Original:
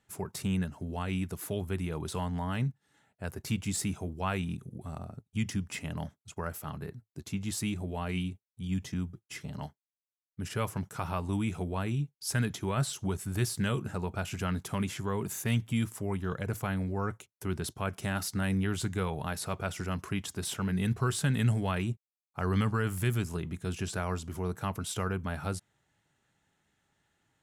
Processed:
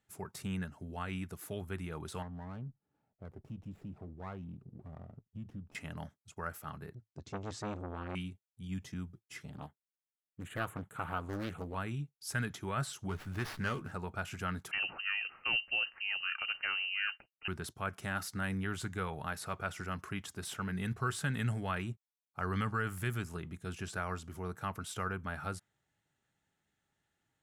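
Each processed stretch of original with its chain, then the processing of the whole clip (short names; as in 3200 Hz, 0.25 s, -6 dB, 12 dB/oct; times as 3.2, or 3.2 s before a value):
2.22–5.75 running mean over 21 samples + compressor 2:1, threshold -36 dBFS + running maximum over 9 samples
6.95–8.15 LPF 6800 Hz 24 dB/oct + low shelf 260 Hz +7.5 dB + core saturation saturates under 730 Hz
9.5–11.75 Butterworth band-stop 5300 Hz, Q 1.4 + Doppler distortion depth 0.92 ms
13.09–13.92 doubler 12 ms -8 dB + running maximum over 5 samples
14.71–17.48 de-esser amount 65% + inverted band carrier 2900 Hz
whole clip: notch 1000 Hz, Q 17; dynamic EQ 1400 Hz, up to +8 dB, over -51 dBFS, Q 1; gain -7.5 dB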